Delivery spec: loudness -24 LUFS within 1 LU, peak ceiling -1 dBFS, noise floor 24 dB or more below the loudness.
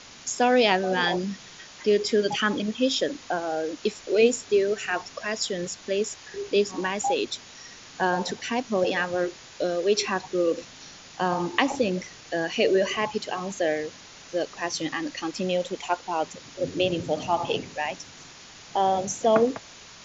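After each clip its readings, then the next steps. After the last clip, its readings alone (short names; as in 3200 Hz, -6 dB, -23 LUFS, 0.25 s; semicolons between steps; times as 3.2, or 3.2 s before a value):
noise floor -47 dBFS; noise floor target -50 dBFS; loudness -26.0 LUFS; peak -4.0 dBFS; loudness target -24.0 LUFS
-> denoiser 6 dB, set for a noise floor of -47 dBFS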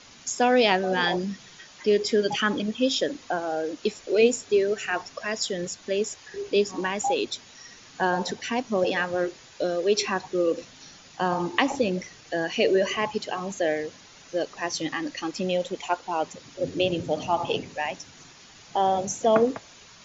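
noise floor -50 dBFS; loudness -26.0 LUFS; peak -4.0 dBFS; loudness target -24.0 LUFS
-> gain +2 dB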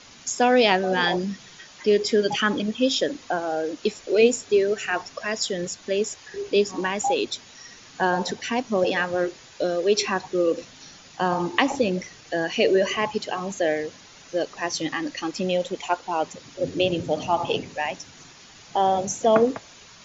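loudness -24.0 LUFS; peak -2.0 dBFS; noise floor -48 dBFS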